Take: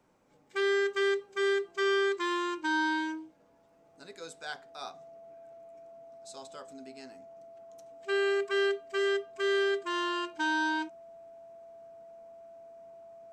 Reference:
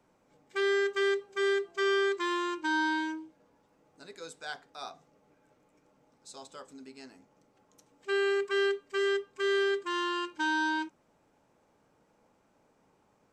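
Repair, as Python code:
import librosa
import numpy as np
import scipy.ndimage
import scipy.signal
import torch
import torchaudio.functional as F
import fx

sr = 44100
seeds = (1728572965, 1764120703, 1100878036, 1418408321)

y = fx.notch(x, sr, hz=670.0, q=30.0)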